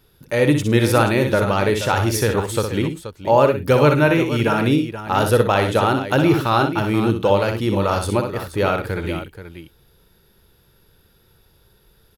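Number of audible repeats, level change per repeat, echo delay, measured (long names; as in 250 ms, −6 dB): 3, repeats not evenly spaced, 61 ms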